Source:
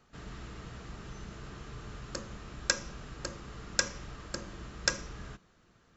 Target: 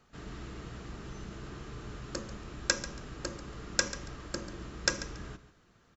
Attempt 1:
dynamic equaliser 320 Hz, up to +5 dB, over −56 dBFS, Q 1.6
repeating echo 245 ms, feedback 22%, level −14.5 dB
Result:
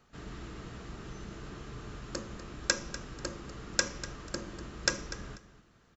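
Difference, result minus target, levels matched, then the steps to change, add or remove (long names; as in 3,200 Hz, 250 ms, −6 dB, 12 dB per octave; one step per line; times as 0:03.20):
echo 105 ms late
change: repeating echo 140 ms, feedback 22%, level −14.5 dB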